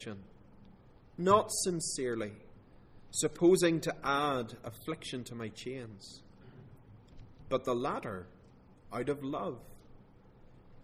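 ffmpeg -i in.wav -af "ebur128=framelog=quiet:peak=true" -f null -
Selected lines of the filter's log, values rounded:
Integrated loudness:
  I:         -33.3 LUFS
  Threshold: -45.5 LUFS
Loudness range:
  LRA:         9.4 LU
  Threshold: -55.2 LUFS
  LRA low:   -40.9 LUFS
  LRA high:  -31.5 LUFS
True peak:
  Peak:      -11.6 dBFS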